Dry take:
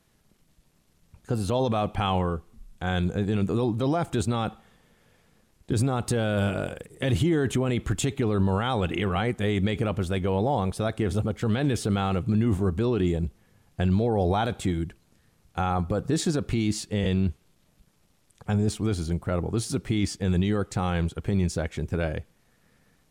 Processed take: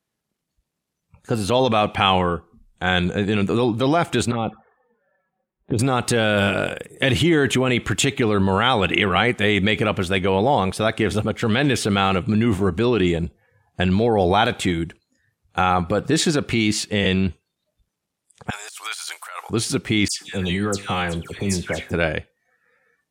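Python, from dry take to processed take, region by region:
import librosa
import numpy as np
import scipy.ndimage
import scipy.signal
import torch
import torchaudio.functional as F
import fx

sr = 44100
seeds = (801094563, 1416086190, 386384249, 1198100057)

y = fx.chain(x, sr, fx.lowpass(hz=1700.0, slope=12),
    fx.env_flanger(rest_ms=5.6, full_db=-23.5), at=(4.31, 5.79))
y = fx.chain(y, sr, fx.highpass(hz=960.0, slope=24),
    fx.high_shelf(hz=5900.0, db=10.0),
    fx.over_compress(threshold_db=-42.0, ratio=-1.0), at=(18.5, 19.5))
y = fx.chain(y, sr, fx.high_shelf(hz=5100.0, db=8.5),
    fx.comb_fb(f0_hz=50.0, decay_s=0.41, harmonics='all', damping=0.0, mix_pct=50),
    fx.dispersion(late='lows', ms=135.0, hz=2100.0), at=(20.08, 21.92))
y = fx.noise_reduce_blind(y, sr, reduce_db=19)
y = fx.highpass(y, sr, hz=170.0, slope=6)
y = fx.dynamic_eq(y, sr, hz=2400.0, q=0.84, threshold_db=-48.0, ratio=4.0, max_db=8)
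y = y * 10.0 ** (7.0 / 20.0)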